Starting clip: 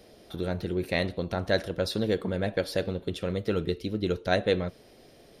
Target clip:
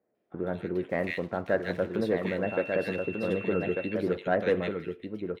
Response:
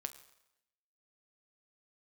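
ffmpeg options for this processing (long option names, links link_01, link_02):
-filter_complex "[0:a]highpass=160,agate=range=-23dB:threshold=-45dB:ratio=16:detection=peak,highshelf=frequency=3100:width_type=q:width=1.5:gain=-13.5,asettb=1/sr,asplit=3[link_01][link_02][link_03];[link_01]atrim=end=0.744[link_04];[link_02]atrim=start=0.74:end=1.81,asetpts=PTS-STARTPTS,afade=type=in:duration=0.004:curve=qsin,afade=type=out:start_time=1.066:duration=0.004:curve=qsin,aeval=exprs='sgn(val(0))*max(abs(val(0))-0.00158,0)':channel_layout=same[link_05];[link_03]atrim=start=1.806[link_06];[link_04][link_05]acrossfade=duration=0.004:curve1=hsin:curve2=qsin[link_07];[link_07][link_06]acrossfade=duration=0.004:curve1=qsin:curve2=hsin,acrossover=split=1900[link_08][link_09];[link_09]adelay=150[link_10];[link_08][link_10]amix=inputs=2:normalize=0,asoftclip=type=tanh:threshold=-12.5dB,aecho=1:1:1193:0.562,asettb=1/sr,asplit=3[link_11][link_12][link_13];[link_11]atrim=end=2.434[link_14];[link_12]atrim=start=2.43:end=3.94,asetpts=PTS-STARTPTS,afade=type=in:duration=0.004:curve=qsin,afade=type=out:start_time=1.506:duration=0.004:curve=qsin,aeval=exprs='val(0)+0.01*sin(2*PI*2700*n/s)':channel_layout=same[link_15];[link_13]atrim=start=3.936[link_16];[link_14][link_15]acrossfade=duration=0.004:curve1=hsin:curve2=qsin[link_17];[link_17][link_16]acrossfade=duration=0.004:curve1=qsin:curve2=hsin"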